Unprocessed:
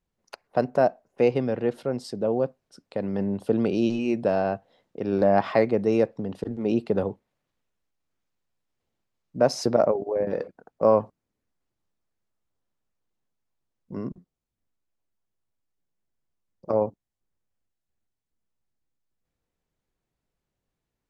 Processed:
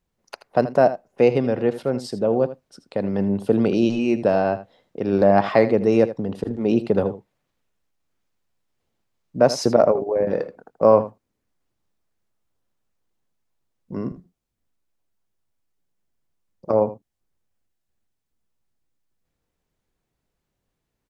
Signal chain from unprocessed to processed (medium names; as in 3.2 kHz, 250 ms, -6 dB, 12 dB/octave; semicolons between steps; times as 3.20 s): delay 80 ms -14 dB; trim +4.5 dB